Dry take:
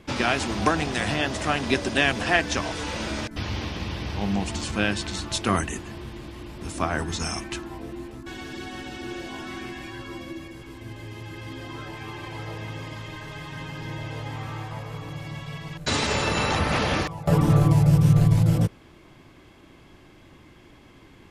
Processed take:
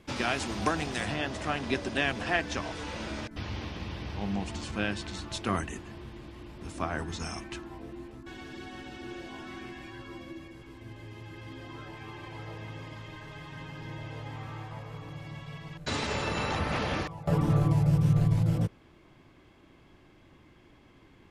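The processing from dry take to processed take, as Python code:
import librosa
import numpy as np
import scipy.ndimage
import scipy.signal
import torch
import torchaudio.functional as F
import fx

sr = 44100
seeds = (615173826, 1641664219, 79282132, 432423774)

y = fx.high_shelf(x, sr, hz=5600.0, db=fx.steps((0.0, 2.5), (1.05, -7.0)))
y = y * librosa.db_to_amplitude(-6.5)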